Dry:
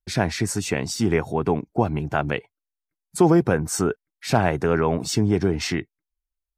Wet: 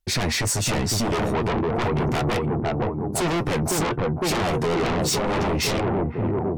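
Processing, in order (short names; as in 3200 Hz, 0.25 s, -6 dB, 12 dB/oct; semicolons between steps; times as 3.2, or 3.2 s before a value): analogue delay 0.507 s, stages 4096, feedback 53%, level -4.5 dB; soft clip -19.5 dBFS, distortion -8 dB; flange 0.47 Hz, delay 7.9 ms, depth 2.1 ms, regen +49%; sine folder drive 9 dB, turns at -19.5 dBFS; bell 1600 Hz -4 dB 0.28 oct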